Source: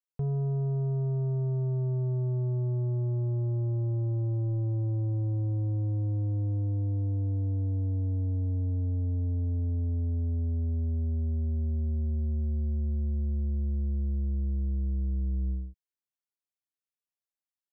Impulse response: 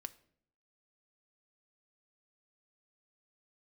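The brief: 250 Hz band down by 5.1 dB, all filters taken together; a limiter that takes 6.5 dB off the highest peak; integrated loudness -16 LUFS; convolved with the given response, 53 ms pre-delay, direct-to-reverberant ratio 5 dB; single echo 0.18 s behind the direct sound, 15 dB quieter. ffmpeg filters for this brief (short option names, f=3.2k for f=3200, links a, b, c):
-filter_complex "[0:a]equalizer=f=250:t=o:g=-9,alimiter=level_in=9dB:limit=-24dB:level=0:latency=1,volume=-9dB,aecho=1:1:180:0.178,asplit=2[a][b];[1:a]atrim=start_sample=2205,adelay=53[c];[b][c]afir=irnorm=-1:irlink=0,volume=-1dB[d];[a][d]amix=inputs=2:normalize=0,volume=20.5dB"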